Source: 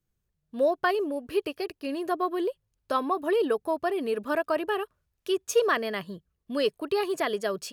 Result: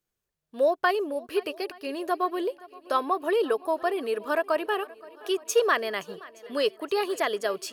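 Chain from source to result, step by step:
bass and treble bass −14 dB, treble 0 dB
on a send: feedback echo with a long and a short gap by turns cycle 871 ms, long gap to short 1.5 to 1, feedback 46%, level −21.5 dB
on the sum: level +2 dB

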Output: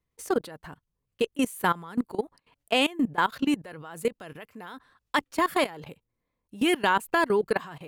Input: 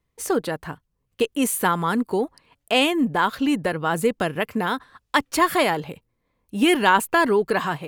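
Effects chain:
0:03.56–0:04.74: low-shelf EQ 420 Hz −5 dB
output level in coarse steps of 20 dB
level −1.5 dB

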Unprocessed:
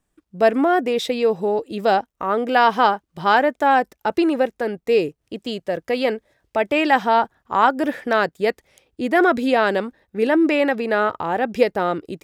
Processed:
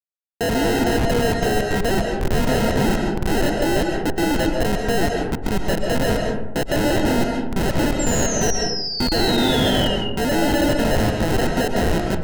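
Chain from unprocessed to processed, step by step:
decimation without filtering 38×
comparator with hysteresis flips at −26.5 dBFS
sound drawn into the spectrogram fall, 0:07.99–0:09.96, 2,800–7,500 Hz −28 dBFS
on a send: convolution reverb RT60 0.95 s, pre-delay 95 ms, DRR 1.5 dB

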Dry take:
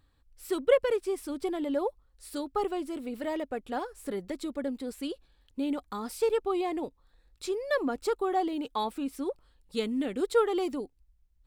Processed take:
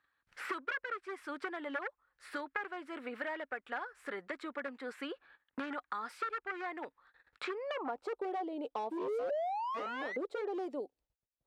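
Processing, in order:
noise gate −59 dBFS, range −29 dB
sound drawn into the spectrogram rise, 0:08.91–0:10.17, 310–2,100 Hz −27 dBFS
wave folding −25.5 dBFS
band-pass filter sweep 1,600 Hz → 590 Hz, 0:07.49–0:08.21
multiband upward and downward compressor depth 100%
level +2 dB

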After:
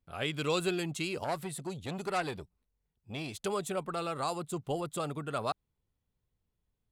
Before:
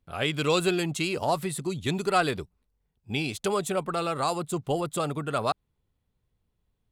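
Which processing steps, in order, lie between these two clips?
0:01.24–0:03.34: saturating transformer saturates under 1,400 Hz
level −6.5 dB

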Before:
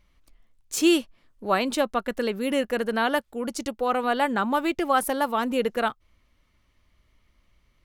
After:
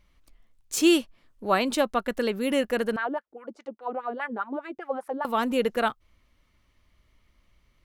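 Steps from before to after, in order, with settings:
0:02.96–0:05.25: LFO wah 4.9 Hz 280–1,800 Hz, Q 3.1

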